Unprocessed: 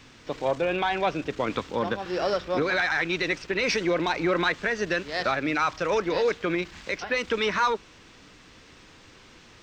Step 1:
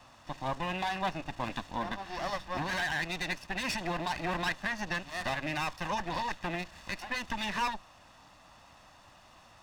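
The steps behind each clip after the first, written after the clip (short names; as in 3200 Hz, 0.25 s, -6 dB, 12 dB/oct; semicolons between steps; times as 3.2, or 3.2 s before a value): minimum comb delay 1.1 ms; band noise 560–1300 Hz -54 dBFS; gain -6.5 dB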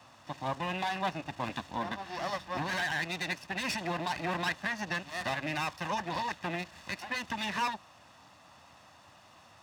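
HPF 75 Hz 24 dB/oct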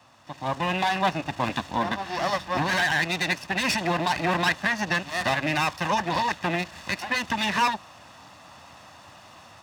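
AGC gain up to 9 dB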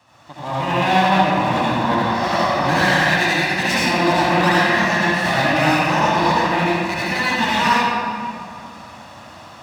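reverb RT60 2.4 s, pre-delay 63 ms, DRR -9 dB; gain -1 dB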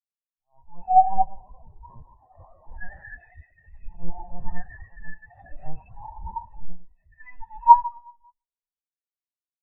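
LPC vocoder at 8 kHz pitch kept; spectral expander 4:1; gain -2.5 dB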